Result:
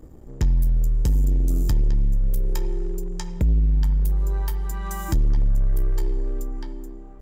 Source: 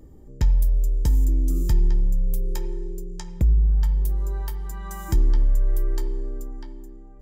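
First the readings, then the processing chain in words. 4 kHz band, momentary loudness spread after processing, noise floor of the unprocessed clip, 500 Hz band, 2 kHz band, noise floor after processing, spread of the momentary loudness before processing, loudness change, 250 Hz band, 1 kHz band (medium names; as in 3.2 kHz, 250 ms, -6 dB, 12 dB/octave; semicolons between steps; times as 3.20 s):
+2.0 dB, 11 LU, -43 dBFS, +2.0 dB, +3.0 dB, -40 dBFS, 14 LU, 0.0 dB, +2.5 dB, +3.0 dB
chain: waveshaping leveller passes 2; trim -3 dB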